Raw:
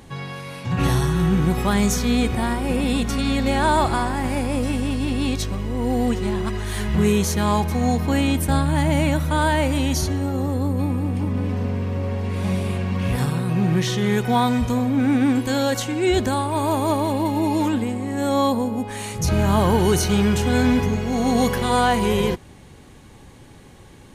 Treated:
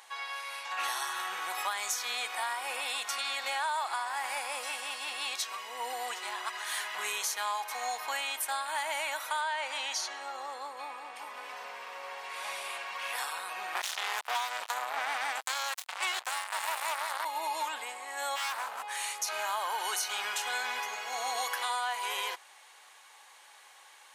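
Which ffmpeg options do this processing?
-filter_complex "[0:a]asettb=1/sr,asplit=3[a][b][c];[a]atrim=end=5.454[d];[b]atrim=start=5.45:end=5.93,asetpts=PTS-STARTPTS,afade=t=in:d=0.004:c=qsin,afade=t=out:st=0.476:d=0.004:c=qsin,aecho=1:1:4.4:0.71,atrim=end_sample=21168[e];[c]atrim=start=5.926[f];[d][e]acrossfade=d=0.004:c1=hsin:c2=qsin[g];[g][f]acrossfade=d=0.004:c1=qsin:c2=hsin,asettb=1/sr,asplit=3[h][i][j];[h]atrim=end=9.414[k];[i]atrim=start=9.41:end=11.16,asetpts=PTS-STARTPTS,afade=t=in:d=0.004:c=qsin,afade=t=out:st=1.746:d=0.004:c=qsin,lowpass=6.3k[l];[j]atrim=start=11.156[m];[k][l]acrossfade=d=0.004:c1=hsin:c2=qsin[n];[n][m]acrossfade=d=0.004:c1=qsin:c2=hsin,asettb=1/sr,asplit=3[o][p][q];[o]atrim=end=13.754[r];[p]atrim=start=13.75:end=17.25,asetpts=PTS-STARTPTS,afade=t=in:d=0.004:c=qsin,afade=t=out:st=3.496:d=0.004:c=qsin,acrusher=bits=2:mix=0:aa=0.5[s];[q]atrim=start=17.246[t];[r][s]acrossfade=d=0.004:c1=hsin:c2=qsin[u];[u][t]acrossfade=d=0.004:c1=qsin:c2=hsin,asplit=3[v][w][x];[v]afade=t=out:st=18.35:d=0.02[y];[w]aeval=exprs='0.075*(abs(mod(val(0)/0.075+3,4)-2)-1)':c=same,afade=t=in:st=18.35:d=0.02,afade=t=out:st=18.96:d=0.02[z];[x]afade=t=in:st=18.96:d=0.02[aa];[y][z][aa]amix=inputs=3:normalize=0,highpass=f=820:w=0.5412,highpass=f=820:w=1.3066,acompressor=threshold=-28dB:ratio=6,volume=-1.5dB"

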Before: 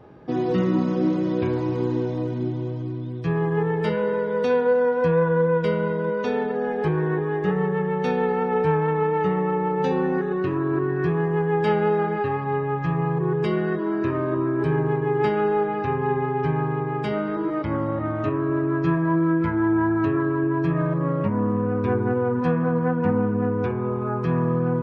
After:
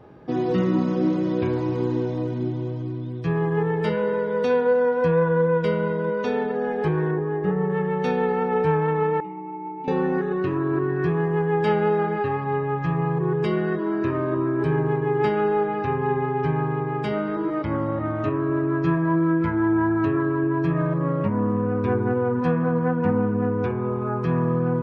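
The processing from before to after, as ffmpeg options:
-filter_complex "[0:a]asettb=1/sr,asplit=3[a][b][c];[a]atrim=end=7.114[d];[b]atrim=start=7.11:end=7.7,asetpts=PTS-STARTPTS,afade=t=in:d=0.004:c=qsin,afade=t=out:st=0.586:d=0.004:c=qsin,lowpass=f=1.1k:p=1[e];[c]atrim=start=7.696[f];[d][e]acrossfade=d=0.004:c1=hsin:c2=qsin[g];[g][f]acrossfade=d=0.004:c1=qsin:c2=hsin,asettb=1/sr,asplit=3[h][i][j];[h]atrim=end=9.204[k];[i]atrim=start=9.2:end=9.88,asetpts=PTS-STARTPTS,afade=t=in:d=0.004:c=qsin,afade=t=out:st=0.676:d=0.004:c=qsin,asplit=3[l][m][n];[l]bandpass=f=300:t=q:w=8,volume=0dB[o];[m]bandpass=f=870:t=q:w=8,volume=-6dB[p];[n]bandpass=f=2.24k:t=q:w=8,volume=-9dB[q];[o][p][q]amix=inputs=3:normalize=0[r];[j]atrim=start=9.876[s];[k][r]acrossfade=d=0.004:c1=hsin:c2=qsin[t];[t][s]acrossfade=d=0.004:c1=qsin:c2=hsin"

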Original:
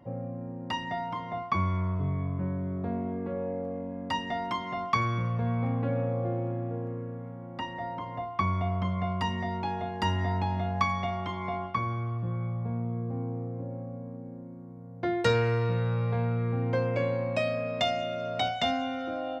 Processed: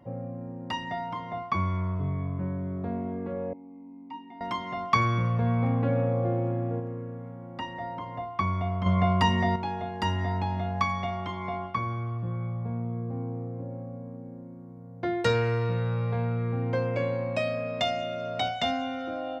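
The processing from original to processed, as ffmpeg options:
-filter_complex "[0:a]asettb=1/sr,asplit=3[a][b][c];[a]atrim=end=3.534[d];[b]atrim=start=3.53:end=4.41,asetpts=PTS-STARTPTS,afade=t=in:d=0.004:c=qsin,afade=t=out:st=0.876:d=0.004:c=qsin,asplit=3[e][f][g];[e]bandpass=f=300:t=q:w=8,volume=0dB[h];[f]bandpass=f=870:t=q:w=8,volume=-6dB[i];[g]bandpass=f=2.24k:t=q:w=8,volume=-9dB[j];[h][i][j]amix=inputs=3:normalize=0[k];[c]atrim=start=4.406[l];[d][k]acrossfade=d=0.004:c1=hsin:c2=qsin[m];[m][l]acrossfade=d=0.004:c1=qsin:c2=hsin,asettb=1/sr,asplit=3[n][o][p];[n]atrim=end=8.864[q];[o]atrim=start=8.86:end=9.56,asetpts=PTS-STARTPTS,afade=t=in:d=0.004:c=qsin,afade=t=out:st=0.696:d=0.004:c=qsin,acontrast=90[r];[p]atrim=start=9.556[s];[q][r]acrossfade=d=0.004:c1=hsin:c2=qsin[t];[t][s]acrossfade=d=0.004:c1=qsin:c2=hsin,asplit=3[u][v][w];[u]atrim=end=4.922[x];[v]atrim=start=4.918:end=6.802,asetpts=PTS-STARTPTS,volume=3.5dB[y];[w]atrim=start=6.798[z];[x][y]acrossfade=d=0.004:c1=hsin:c2=hsin[aa];[aa][z]acrossfade=d=0.004:c1=hsin:c2=hsin"

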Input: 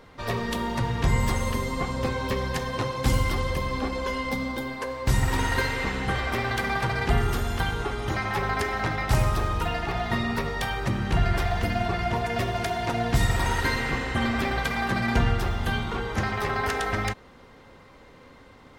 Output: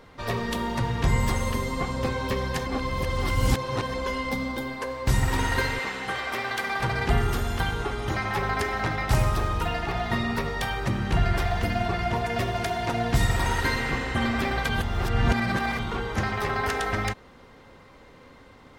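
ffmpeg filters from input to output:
-filter_complex "[0:a]asettb=1/sr,asplit=3[a][b][c];[a]atrim=end=5.794[d];[b]atrim=start=5.79:end=6.8,asetpts=PTS-STARTPTS,afade=t=in:d=0.004:c=qsin,afade=t=out:st=1.006:d=0.004:c=qsin,highpass=f=540:p=1[e];[c]atrim=start=6.796[f];[d][e]acrossfade=d=0.004:c1=hsin:c2=qsin[g];[g][f]acrossfade=d=0.004:c1=qsin:c2=hsin,asplit=5[h][i][j][k][l];[h]atrim=end=2.662[m];[i]atrim=start=2.658:end=3.942,asetpts=PTS-STARTPTS,areverse[n];[j]atrim=start=3.938:end=14.692[o];[k]atrim=start=14.688:end=15.792,asetpts=PTS-STARTPTS,areverse[p];[l]atrim=start=15.788[q];[m][n]acrossfade=d=0.004:c1=hsin:c2=hsin[r];[r][o]acrossfade=d=0.004:c1=hsin:c2=hsin[s];[s][p]acrossfade=d=0.004:c1=hsin:c2=hsin[t];[t][q]acrossfade=d=0.004:c1=hsin:c2=hsin"

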